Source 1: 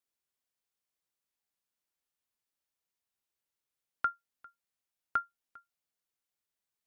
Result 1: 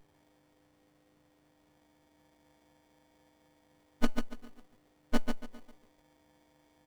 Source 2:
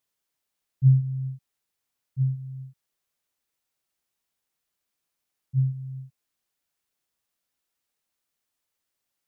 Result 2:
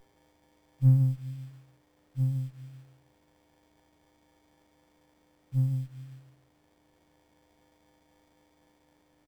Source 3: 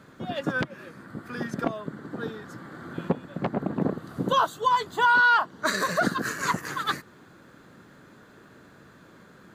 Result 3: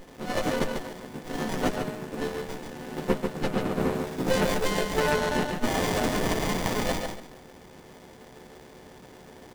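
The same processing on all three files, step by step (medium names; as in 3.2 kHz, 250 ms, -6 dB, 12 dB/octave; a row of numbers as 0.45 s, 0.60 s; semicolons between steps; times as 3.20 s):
partials quantised in pitch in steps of 3 st; high-pass 140 Hz 12 dB/octave; treble shelf 2.4 kHz +10 dB; de-hum 206.6 Hz, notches 3; peak limiter -13 dBFS; feedback delay 143 ms, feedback 26%, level -5 dB; sliding maximum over 33 samples; peak normalisation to -12 dBFS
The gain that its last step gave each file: +7.0 dB, +1.0 dB, +2.5 dB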